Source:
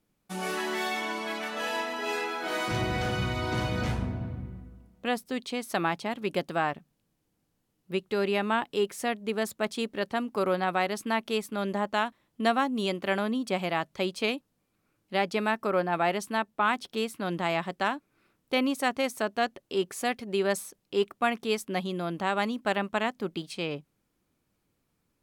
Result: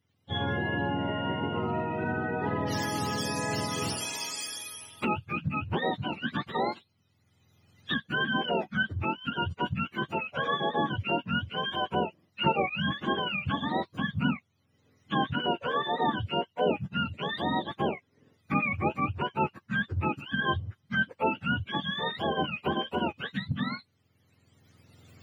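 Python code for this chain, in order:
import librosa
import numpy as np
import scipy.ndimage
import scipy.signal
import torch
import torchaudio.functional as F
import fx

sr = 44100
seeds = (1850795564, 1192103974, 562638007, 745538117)

y = fx.octave_mirror(x, sr, pivot_hz=790.0)
y = fx.recorder_agc(y, sr, target_db=-21.0, rise_db_per_s=15.0, max_gain_db=30)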